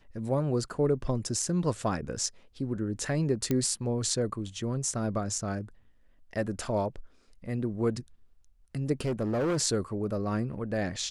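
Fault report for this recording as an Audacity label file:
3.510000	3.510000	pop -14 dBFS
9.000000	9.590000	clipped -25 dBFS

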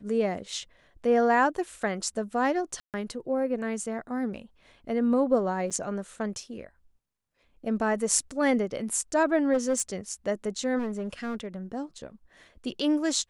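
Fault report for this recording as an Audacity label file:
2.800000	2.940000	gap 0.138 s
5.700000	5.710000	gap 7 ms
9.530000	9.820000	clipped -20 dBFS
10.780000	11.560000	clipped -28 dBFS

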